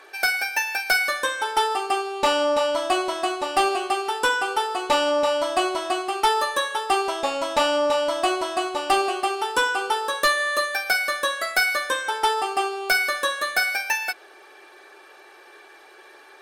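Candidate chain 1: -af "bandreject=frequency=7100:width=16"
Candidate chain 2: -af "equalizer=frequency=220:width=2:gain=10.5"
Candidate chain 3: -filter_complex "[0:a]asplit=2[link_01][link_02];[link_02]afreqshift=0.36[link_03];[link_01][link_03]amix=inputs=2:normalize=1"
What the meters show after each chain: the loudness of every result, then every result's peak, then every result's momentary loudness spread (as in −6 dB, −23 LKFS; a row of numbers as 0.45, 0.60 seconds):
−22.5, −22.5, −25.5 LKFS; −12.0, −10.5, −10.0 dBFS; 5, 5, 5 LU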